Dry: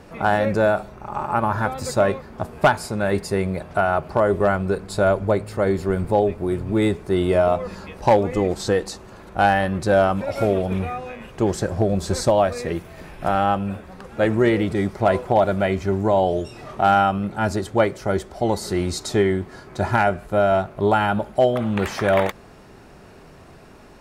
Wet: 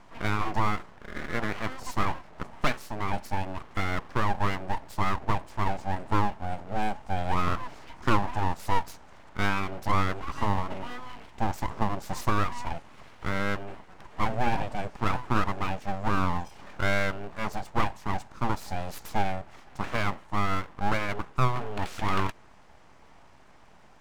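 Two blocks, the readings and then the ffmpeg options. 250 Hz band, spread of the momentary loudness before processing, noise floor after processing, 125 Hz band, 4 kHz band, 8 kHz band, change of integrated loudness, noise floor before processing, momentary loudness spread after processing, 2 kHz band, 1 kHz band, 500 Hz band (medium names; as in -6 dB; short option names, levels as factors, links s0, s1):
-10.5 dB, 9 LU, -52 dBFS, -6.5 dB, -5.5 dB, -10.0 dB, -9.5 dB, -45 dBFS, 10 LU, -6.0 dB, -7.0 dB, -17.0 dB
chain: -af "highpass=230,equalizer=f=230:t=q:w=4:g=4,equalizer=f=460:t=q:w=4:g=9,equalizer=f=3700:t=q:w=4:g=-9,lowpass=f=7900:w=0.5412,lowpass=f=7900:w=1.3066,aeval=exprs='0.841*(cos(1*acos(clip(val(0)/0.841,-1,1)))-cos(1*PI/2))+0.119*(cos(2*acos(clip(val(0)/0.841,-1,1)))-cos(2*PI/2))':c=same,aeval=exprs='abs(val(0))':c=same,volume=0.422"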